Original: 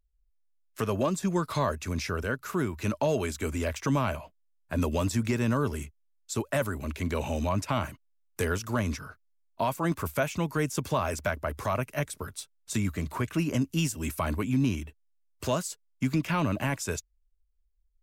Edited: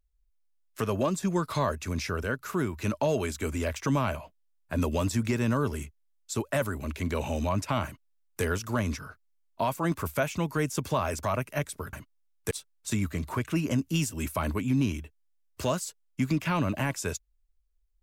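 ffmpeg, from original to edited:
-filter_complex "[0:a]asplit=4[s0][s1][s2][s3];[s0]atrim=end=11.232[s4];[s1]atrim=start=11.638:end=12.342[s5];[s2]atrim=start=7.848:end=8.432[s6];[s3]atrim=start=12.338[s7];[s4][s5]acrossfade=d=0.004:c1=hsin:c2=hsin[s8];[s8][s6]acrossfade=d=0.004:c1=hsin:c2=hsin[s9];[s9][s7]acrossfade=d=0.004:c1=hsin:c2=hsin"

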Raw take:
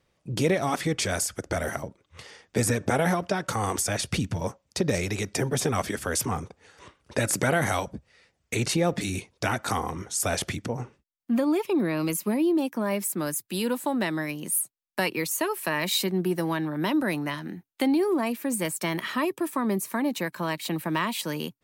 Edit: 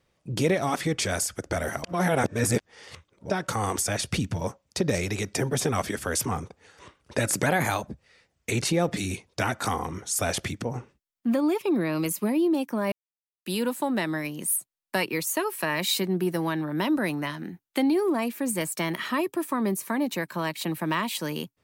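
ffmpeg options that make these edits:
-filter_complex "[0:a]asplit=7[s0][s1][s2][s3][s4][s5][s6];[s0]atrim=end=1.842[s7];[s1]atrim=start=1.838:end=3.302,asetpts=PTS-STARTPTS,areverse[s8];[s2]atrim=start=3.298:end=7.464[s9];[s3]atrim=start=7.46:end=7.95,asetpts=PTS-STARTPTS,asetrate=48069,aresample=44100[s10];[s4]atrim=start=7.946:end=12.96,asetpts=PTS-STARTPTS,afade=t=out:st=5.01:d=0.004:c=hsin[s11];[s5]atrim=start=12.96:end=13.5,asetpts=PTS-STARTPTS,volume=0[s12];[s6]atrim=start=13.5,asetpts=PTS-STARTPTS,afade=t=in:d=0.004:c=hsin[s13];[s7][s8]acrossfade=d=0.004:c1=hsin:c2=hsin[s14];[s14][s9]acrossfade=d=0.004:c1=hsin:c2=hsin[s15];[s15][s10]acrossfade=d=0.004:c1=hsin:c2=hsin[s16];[s11][s12][s13]concat=n=3:v=0:a=1[s17];[s16][s17]acrossfade=d=0.004:c1=hsin:c2=hsin"

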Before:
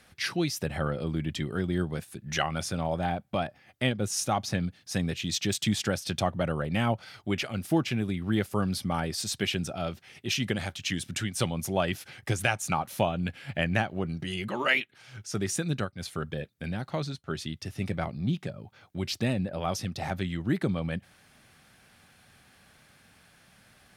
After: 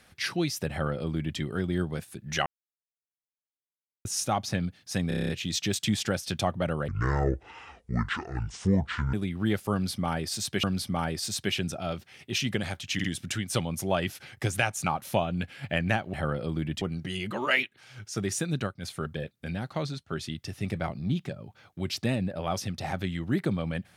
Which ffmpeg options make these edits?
-filter_complex "[0:a]asplit=17[s0][s1][s2][s3][s4][s5][s6][s7][s8][s9][s10][s11][s12][s13][s14][s15][s16];[s0]atrim=end=2.46,asetpts=PTS-STARTPTS,afade=t=out:st=2.456:d=0.004:c=hsin[s17];[s1]atrim=start=2.46:end=4.05,asetpts=PTS-STARTPTS,volume=0[s18];[s2]atrim=start=4.05:end=5.112,asetpts=PTS-STARTPTS,afade=t=in:d=0.004:c=hsin[s19];[s3]atrim=start=5.078:end=5.112[s20];[s4]atrim=start=5.078:end=5.112[s21];[s5]atrim=start=5.078:end=5.112[s22];[s6]atrim=start=5.078:end=5.112[s23];[s7]atrim=start=5.078:end=5.112[s24];[s8]atrim=start=5.078:end=5.112[s25];[s9]atrim=start=5.078:end=6.674[s26];[s10]atrim=start=6.67:end=8,asetpts=PTS-STARTPTS,asetrate=26019,aresample=44100[s27];[s11]atrim=start=7.996:end=9.502[s28];[s12]atrim=start=8.588:end=10.952[s29];[s13]atrim=start=10.898:end=10.952[s30];[s14]atrim=start=10.898:end=13.992[s31];[s15]atrim=start=0.708:end=1.392[s32];[s16]atrim=start=13.988[s33];[s17][s18][s19]concat=n=3:v=0:a=1[s34];[s34][s20]acrossfade=d=0.004:c1=hsin:c2=hsin[s35];[s35][s21]acrossfade=d=0.004:c1=hsin:c2=hsin[s36];[s36][s22]acrossfade=d=0.004:c1=hsin:c2=hsin[s37];[s37][s23]acrossfade=d=0.004:c1=hsin:c2=hsin[s38];[s38][s24]acrossfade=d=0.004:c1=hsin:c2=hsin[s39];[s39][s25]acrossfade=d=0.004:c1=hsin:c2=hsin[s40];[s40][s26]acrossfade=d=0.004:c1=hsin:c2=hsin[s41];[s41][s27]acrossfade=d=0.004:c1=hsin:c2=hsin[s42];[s42][s28]acrossfade=d=0.004:c1=hsin:c2=hsin[s43];[s43][s29]acrossfade=d=0.004:c1=hsin:c2=hsin[s44];[s44][s30]acrossfade=d=0.004:c1=hsin:c2=hsin[s45];[s45][s31]acrossfade=d=0.004:c1=hsin:c2=hsin[s46];[s46][s32]acrossfade=d=0.004:c1=hsin:c2=hsin[s47];[s47][s33]acrossfade=d=0.004:c1=hsin:c2=hsin"

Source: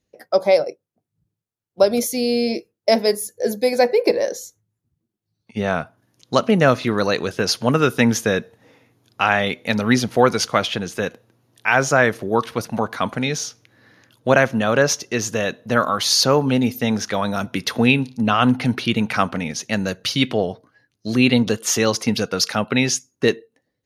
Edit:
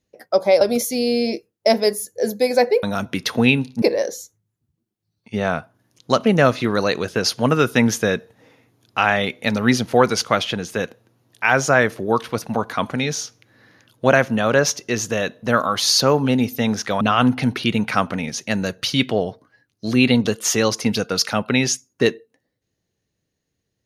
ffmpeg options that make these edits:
-filter_complex "[0:a]asplit=5[s0][s1][s2][s3][s4];[s0]atrim=end=0.612[s5];[s1]atrim=start=1.828:end=4.052[s6];[s2]atrim=start=17.238:end=18.232[s7];[s3]atrim=start=4.048:end=17.242[s8];[s4]atrim=start=18.228[s9];[s5][s6]acrossfade=d=0.004:c1=hsin:c2=hsin[s10];[s10][s7]acrossfade=d=0.004:c1=hsin:c2=hsin[s11];[s11][s8]acrossfade=d=0.004:c1=hsin:c2=hsin[s12];[s12][s9]acrossfade=d=0.004:c1=hsin:c2=hsin"

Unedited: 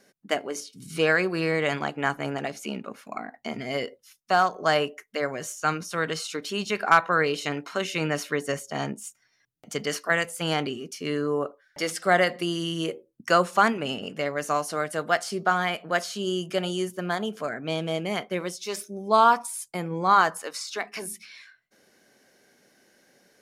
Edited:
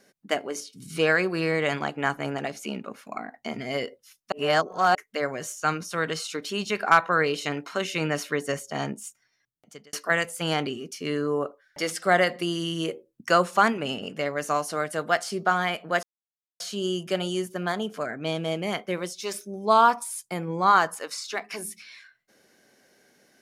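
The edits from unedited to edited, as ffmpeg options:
-filter_complex "[0:a]asplit=5[s0][s1][s2][s3][s4];[s0]atrim=end=4.322[s5];[s1]atrim=start=4.318:end=4.952,asetpts=PTS-STARTPTS,areverse[s6];[s2]atrim=start=4.948:end=9.93,asetpts=PTS-STARTPTS,afade=t=out:st=4.082:d=0.9[s7];[s3]atrim=start=9.93:end=16.03,asetpts=PTS-STARTPTS,afade=t=in:d=0.004:c=hsin,afade=t=out:st=6.096:d=0.004:c=hsin,apad=pad_dur=0.57[s8];[s4]atrim=start=16.03,asetpts=PTS-STARTPTS,afade=t=in:d=0.004:c=hsin[s9];[s5][s6]acrossfade=d=0.004:c1=hsin:c2=hsin[s10];[s7][s8][s9]concat=n=3:v=0:a=1[s11];[s10][s11]acrossfade=d=0.004:c1=hsin:c2=hsin"

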